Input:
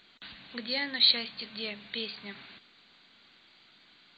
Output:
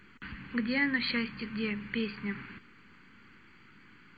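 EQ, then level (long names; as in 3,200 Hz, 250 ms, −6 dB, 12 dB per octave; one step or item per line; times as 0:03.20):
spectral tilt −2 dB per octave
phaser with its sweep stopped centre 1,600 Hz, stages 4
+8.0 dB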